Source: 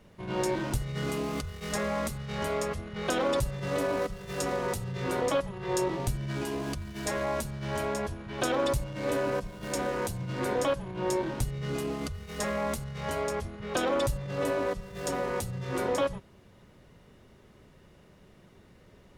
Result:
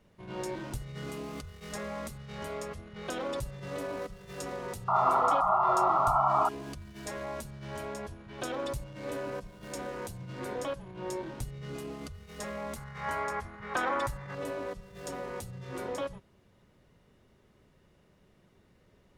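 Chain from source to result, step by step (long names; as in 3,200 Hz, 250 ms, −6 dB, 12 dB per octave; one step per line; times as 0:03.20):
0:04.88–0:06.49: sound drawn into the spectrogram noise 610–1,400 Hz −18 dBFS
0:12.76–0:14.35: flat-topped bell 1,300 Hz +11 dB
level −7.5 dB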